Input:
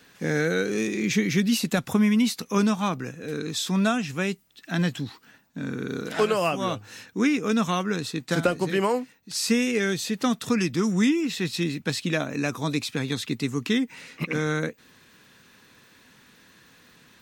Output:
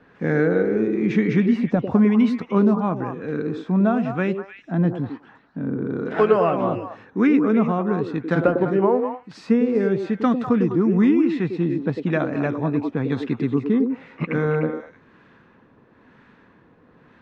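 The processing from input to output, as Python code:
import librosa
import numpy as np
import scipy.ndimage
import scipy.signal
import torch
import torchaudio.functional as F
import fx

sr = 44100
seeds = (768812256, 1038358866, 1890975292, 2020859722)

y = fx.filter_lfo_lowpass(x, sr, shape='sine', hz=1.0, low_hz=780.0, high_hz=1600.0, q=0.83)
y = fx.echo_stepped(y, sr, ms=100, hz=360.0, octaves=1.4, feedback_pct=70, wet_db=-2.5)
y = y * 10.0 ** (4.5 / 20.0)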